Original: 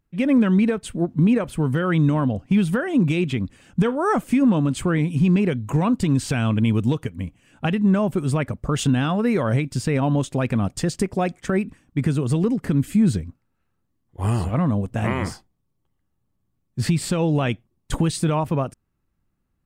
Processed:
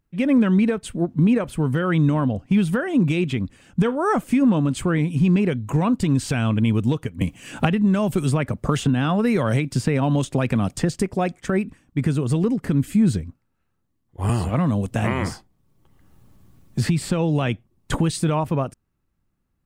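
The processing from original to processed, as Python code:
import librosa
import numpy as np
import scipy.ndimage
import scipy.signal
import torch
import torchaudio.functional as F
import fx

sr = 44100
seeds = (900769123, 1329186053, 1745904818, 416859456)

y = fx.band_squash(x, sr, depth_pct=100, at=(7.21, 10.94))
y = fx.band_squash(y, sr, depth_pct=70, at=(14.29, 18.0))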